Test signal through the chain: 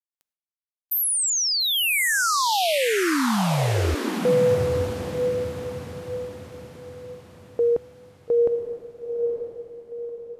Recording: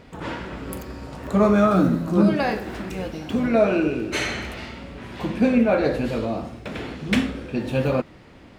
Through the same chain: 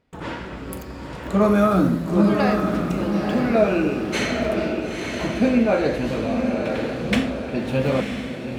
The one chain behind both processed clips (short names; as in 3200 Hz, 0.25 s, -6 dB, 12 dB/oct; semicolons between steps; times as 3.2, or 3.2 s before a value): gate with hold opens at -35 dBFS; diffused feedback echo 0.931 s, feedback 43%, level -4.5 dB